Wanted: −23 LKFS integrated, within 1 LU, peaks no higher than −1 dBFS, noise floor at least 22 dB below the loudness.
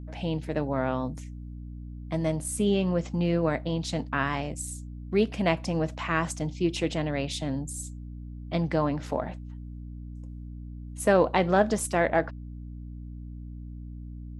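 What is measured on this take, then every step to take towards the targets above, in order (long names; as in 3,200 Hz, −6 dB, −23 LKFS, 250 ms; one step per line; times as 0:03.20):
mains hum 60 Hz; hum harmonics up to 300 Hz; level of the hum −37 dBFS; integrated loudness −28.0 LKFS; sample peak −8.0 dBFS; target loudness −23.0 LKFS
→ hum removal 60 Hz, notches 5
level +5 dB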